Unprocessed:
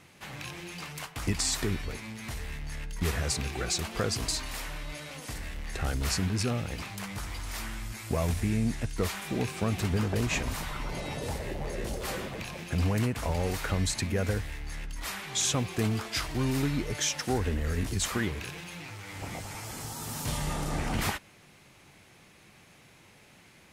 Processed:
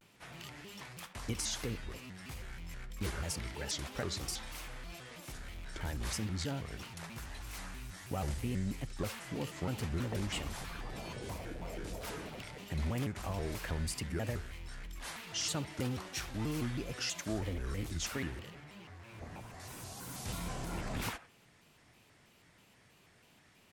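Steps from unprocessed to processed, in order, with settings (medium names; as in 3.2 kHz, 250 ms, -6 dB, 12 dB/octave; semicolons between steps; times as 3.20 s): 18.38–19.60 s: treble shelf 2.7 kHz -10.5 dB; speakerphone echo 80 ms, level -15 dB; vibrato with a chosen wave square 3.1 Hz, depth 250 cents; trim -8 dB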